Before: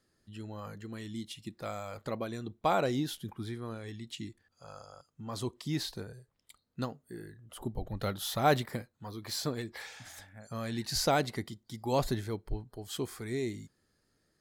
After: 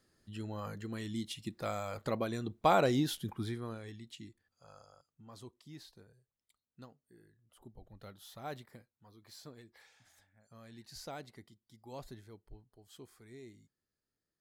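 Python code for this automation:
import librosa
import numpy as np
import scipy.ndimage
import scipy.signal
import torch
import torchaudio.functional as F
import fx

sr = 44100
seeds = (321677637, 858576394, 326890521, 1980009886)

y = fx.gain(x, sr, db=fx.line((3.43, 1.5), (4.2, -8.5), (4.84, -8.5), (5.68, -17.5)))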